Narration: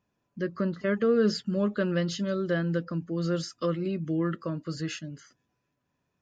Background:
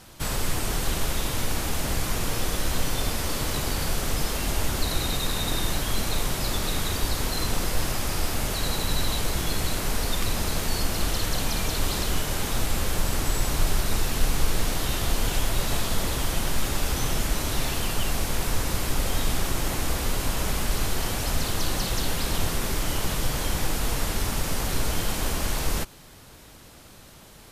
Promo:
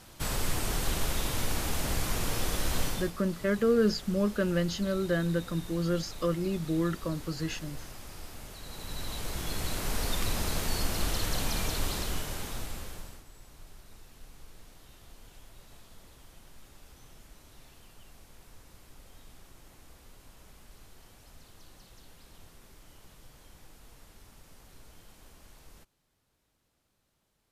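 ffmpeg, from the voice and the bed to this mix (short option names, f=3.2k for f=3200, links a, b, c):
-filter_complex "[0:a]adelay=2600,volume=-1dB[a];[1:a]volume=9.5dB,afade=t=out:st=2.84:d=0.28:silence=0.199526,afade=t=in:st=8.65:d=1.42:silence=0.211349,afade=t=out:st=11.62:d=1.62:silence=0.0668344[b];[a][b]amix=inputs=2:normalize=0"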